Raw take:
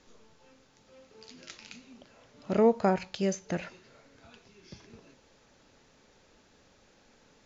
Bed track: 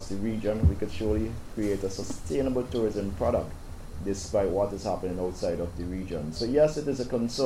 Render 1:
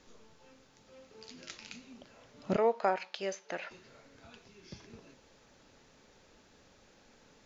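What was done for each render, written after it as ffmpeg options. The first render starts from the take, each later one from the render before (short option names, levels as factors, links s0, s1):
-filter_complex "[0:a]asettb=1/sr,asplit=3[s0][s1][s2];[s0]atrim=end=2.564[s3];[s1]atrim=start=2.56:end=3.71,asetpts=PTS-STARTPTS,afade=t=in:d=0.004:c=qsin,afade=t=out:st=1.146:d=0.004:c=qsin,highpass=570,lowpass=4500[s4];[s2]atrim=start=3.706[s5];[s3][s4]acrossfade=d=0.004:c1=hsin:c2=qsin[s6];[s6][s5]acrossfade=d=0.004:c1=qsin:c2=hsin"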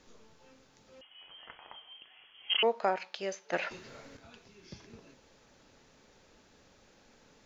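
-filter_complex "[0:a]asettb=1/sr,asplit=3[s0][s1][s2];[s0]atrim=end=1.014[s3];[s1]atrim=start=1.01:end=2.63,asetpts=PTS-STARTPTS,afade=t=in:d=0.004:c=qsin,afade=t=out:st=1.616:d=0.004:c=qsin,lowpass=f=2900:t=q:w=0.5098,lowpass=f=2900:t=q:w=0.6013,lowpass=f=2900:t=q:w=0.9,lowpass=f=2900:t=q:w=2.563,afreqshift=-3400[s4];[s2]atrim=start=2.626[s5];[s3][s4]acrossfade=d=0.004:c1=hsin:c2=qsin[s6];[s6][s5]acrossfade=d=0.004:c1=qsin:c2=hsin,asplit=3[s7][s8][s9];[s7]atrim=end=3.532[s10];[s8]atrim=start=3.528:end=4.172,asetpts=PTS-STARTPTS,volume=2.37[s11];[s9]atrim=start=4.168[s12];[s10][s11]acrossfade=d=0.004:c1=hsin:c2=hsin[s13];[s13][s12]acrossfade=d=0.004:c1=hsin:c2=hsin"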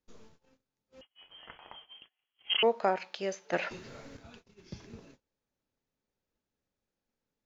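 -af "lowshelf=f=350:g=6,agate=range=0.0355:threshold=0.00224:ratio=16:detection=peak"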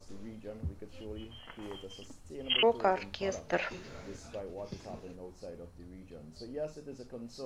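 -filter_complex "[1:a]volume=0.15[s0];[0:a][s0]amix=inputs=2:normalize=0"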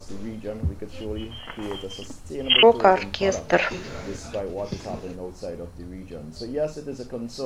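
-af "volume=3.98"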